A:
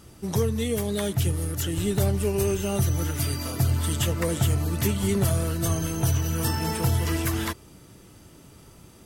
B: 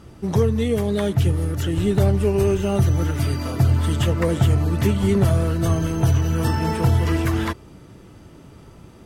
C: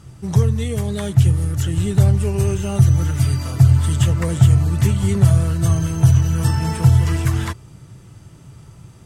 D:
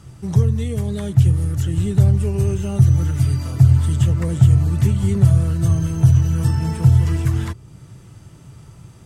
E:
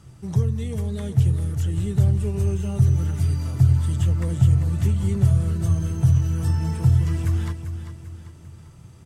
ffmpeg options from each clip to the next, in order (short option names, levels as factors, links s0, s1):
-af "lowpass=f=2000:p=1,volume=2"
-af "equalizer=f=125:t=o:w=1:g=11,equalizer=f=250:t=o:w=1:g=-6,equalizer=f=500:t=o:w=1:g=-4,equalizer=f=8000:t=o:w=1:g=9,volume=0.841"
-filter_complex "[0:a]acrossover=split=440[s0][s1];[s1]acompressor=threshold=0.00562:ratio=1.5[s2];[s0][s2]amix=inputs=2:normalize=0"
-af "aecho=1:1:394|788|1182|1576|1970:0.299|0.134|0.0605|0.0272|0.0122,volume=0.531"